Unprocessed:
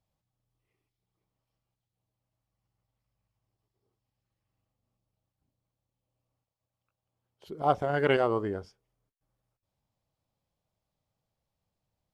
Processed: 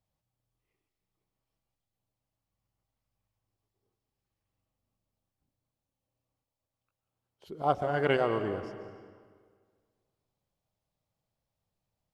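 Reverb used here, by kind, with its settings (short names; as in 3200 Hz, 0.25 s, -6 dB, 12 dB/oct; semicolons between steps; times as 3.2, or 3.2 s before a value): digital reverb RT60 1.8 s, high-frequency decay 0.85×, pre-delay 0.1 s, DRR 9 dB; gain -2 dB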